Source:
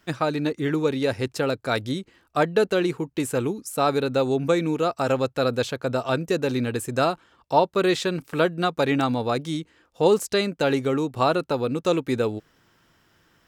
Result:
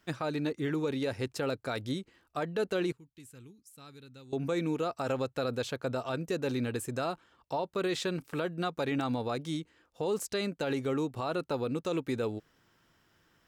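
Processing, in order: 2.92–4.33 s: amplifier tone stack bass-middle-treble 6-0-2; peak limiter -16.5 dBFS, peak gain reduction 11 dB; trim -6.5 dB

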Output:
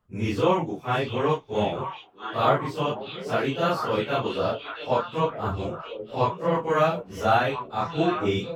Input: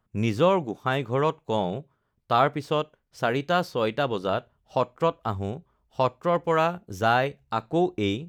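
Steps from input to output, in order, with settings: phase randomisation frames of 100 ms; wide varispeed 0.969×; repeats whose band climbs or falls 672 ms, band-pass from 3.3 kHz, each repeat -1.4 oct, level -3 dB

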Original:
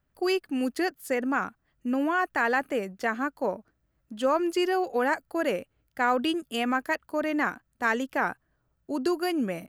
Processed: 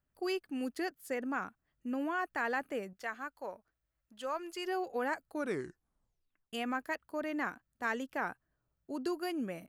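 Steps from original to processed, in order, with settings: 2.93–4.66 s: peaking EQ 210 Hz -11.5 dB 2.5 oct; 5.26 s: tape stop 1.27 s; trim -9 dB

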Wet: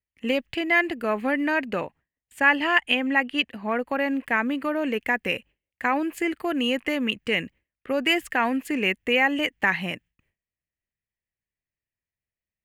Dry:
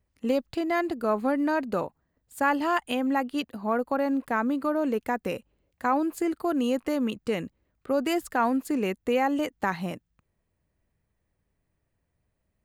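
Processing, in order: 1.67–3.87 s: treble shelf 11 kHz -10 dB; gate with hold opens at -56 dBFS; high-order bell 2.3 kHz +13.5 dB 1.1 oct

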